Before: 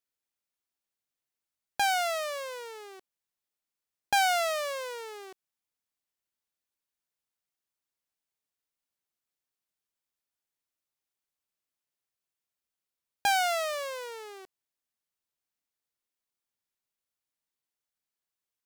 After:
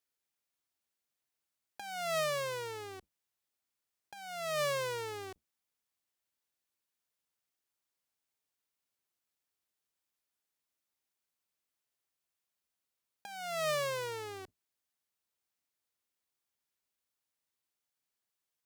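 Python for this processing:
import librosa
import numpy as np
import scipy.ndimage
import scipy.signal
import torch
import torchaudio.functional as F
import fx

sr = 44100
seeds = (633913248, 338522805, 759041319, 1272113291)

y = fx.octave_divider(x, sr, octaves=2, level_db=1.0)
y = fx.highpass(y, sr, hz=160.0, slope=6)
y = fx.over_compress(y, sr, threshold_db=-32.0, ratio=-0.5)
y = y * librosa.db_to_amplitude(-2.5)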